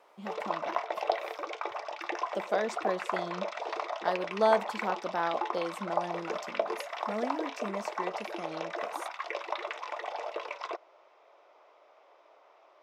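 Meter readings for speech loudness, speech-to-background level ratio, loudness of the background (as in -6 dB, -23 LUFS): -35.0 LUFS, 1.0 dB, -36.0 LUFS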